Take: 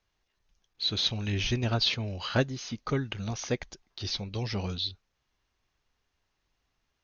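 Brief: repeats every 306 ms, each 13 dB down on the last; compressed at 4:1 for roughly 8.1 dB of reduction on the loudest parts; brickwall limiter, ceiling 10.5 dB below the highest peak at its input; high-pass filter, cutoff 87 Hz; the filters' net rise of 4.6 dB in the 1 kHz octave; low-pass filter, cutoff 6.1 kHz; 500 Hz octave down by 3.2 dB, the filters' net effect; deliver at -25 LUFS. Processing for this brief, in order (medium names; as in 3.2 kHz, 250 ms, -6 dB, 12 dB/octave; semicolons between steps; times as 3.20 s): high-pass 87 Hz; low-pass 6.1 kHz; peaking EQ 500 Hz -6.5 dB; peaking EQ 1 kHz +8.5 dB; compression 4:1, threshold -31 dBFS; peak limiter -27 dBFS; feedback delay 306 ms, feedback 22%, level -13 dB; trim +12.5 dB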